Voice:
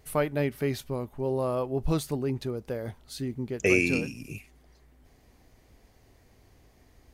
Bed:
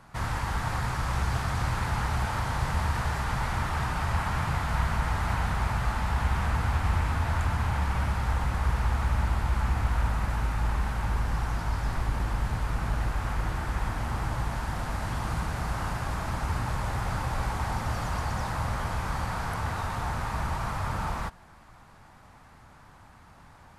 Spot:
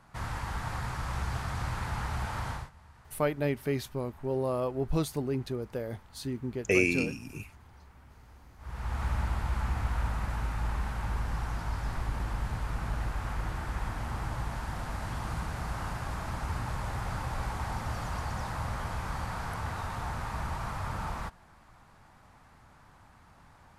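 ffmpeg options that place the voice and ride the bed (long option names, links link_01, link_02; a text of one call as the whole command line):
ffmpeg -i stem1.wav -i stem2.wav -filter_complex "[0:a]adelay=3050,volume=-2dB[link_01];[1:a]volume=18dB,afade=type=out:start_time=2.5:duration=0.2:silence=0.0749894,afade=type=in:start_time=8.58:duration=0.47:silence=0.0668344[link_02];[link_01][link_02]amix=inputs=2:normalize=0" out.wav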